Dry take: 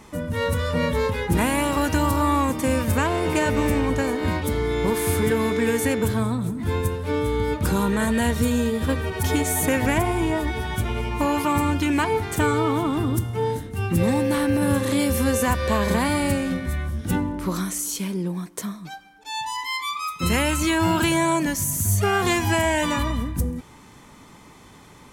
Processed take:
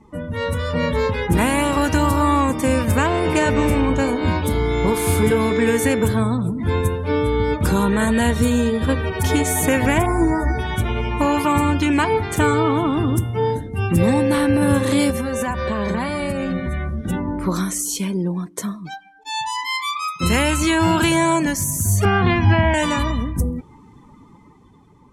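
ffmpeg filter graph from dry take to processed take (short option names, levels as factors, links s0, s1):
-filter_complex "[0:a]asettb=1/sr,asplit=3[s0][s1][s2];[s0]atrim=end=3.654[s3];[s1]atrim=start=3.65:end=5.51,asetpts=PTS-STARTPTS,afade=t=in:d=0.004:c=qsin,afade=t=out:st=1.856:d=0.004:c=qsin,bandreject=f=1800:w=6.1,asplit=2[s4][s5];[s5]adelay=33,volume=0.251[s6];[s4][s6]amix=inputs=2:normalize=0,atrim=end_sample=82026,aeval=exprs='val(0)+0.00316*sin(2*PI*1700*n/s)':c=same[s7];[s2]atrim=start=5.506[s8];[s3][s7]acrossfade=d=0.004:c1=hsin:c2=qsin[s9];[s9][s8]acrossfade=d=0.004:c1=qsin:c2=hsin,asettb=1/sr,asplit=3[s10][s11][s12];[s10]atrim=end=10.064[s13];[s11]atrim=start=10.06:end=10.59,asetpts=PTS-STARTPTS,afade=t=in:d=0.004:c=qsin,afade=t=out:st=0.526:d=0.004:c=qsin,asuperstop=centerf=3000:order=4:qfactor=1,asplit=2[s14][s15];[s15]adelay=15,volume=0.631[s16];[s14][s16]amix=inputs=2:normalize=0,atrim=end_sample=23373[s17];[s12]atrim=start=10.586[s18];[s13][s17]acrossfade=d=0.004:c1=hsin:c2=qsin[s19];[s19][s18]acrossfade=d=0.004:c1=qsin:c2=hsin,asettb=1/sr,asplit=3[s20][s21][s22];[s20]atrim=end=15.104[s23];[s21]atrim=start=15.1:end=17.28,asetpts=PTS-STARTPTS,afade=t=in:d=0.004:c=qsin,afade=t=out:st=2.176:d=0.004:c=qsin,highshelf=f=6100:g=-5.5,acompressor=threshold=0.0794:ratio=10:attack=3.2:release=140:knee=1:detection=peak,aecho=1:1:5.2:0.38,atrim=end_sample=96138[s24];[s22]atrim=start=17.276[s25];[s23][s24]acrossfade=d=0.004:c1=hsin:c2=qsin[s26];[s26][s25]acrossfade=d=0.004:c1=qsin:c2=hsin,asettb=1/sr,asplit=3[s27][s28][s29];[s27]atrim=end=22.054[s30];[s28]atrim=start=22.05:end=22.74,asetpts=PTS-STARTPTS,afade=t=in:d=0.004:c=qsin,afade=t=out:st=0.686:d=0.004:c=qsin,acrossover=split=3200[s31][s32];[s32]acompressor=threshold=0.00794:ratio=4:attack=1:release=60[s33];[s31][s33]amix=inputs=2:normalize=0,lowpass=f=5500:w=0.5412,lowpass=f=5500:w=1.3066,lowshelf=f=260:t=q:w=1.5:g=7[s34];[s29]atrim=start=22.736[s35];[s30][s34]acrossfade=d=0.004:c1=hsin:c2=qsin[s36];[s36][s35]acrossfade=d=0.004:c1=qsin:c2=hsin,afftdn=nr=18:nf=-44,lowpass=12000,dynaudnorm=f=100:g=17:m=1.68"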